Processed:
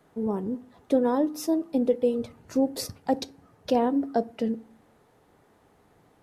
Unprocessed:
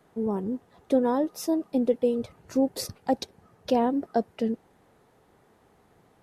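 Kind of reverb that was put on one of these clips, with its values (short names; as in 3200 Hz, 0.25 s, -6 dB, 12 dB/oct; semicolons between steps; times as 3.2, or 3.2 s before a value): FDN reverb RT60 0.39 s, low-frequency decay 1.6×, high-frequency decay 0.65×, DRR 15.5 dB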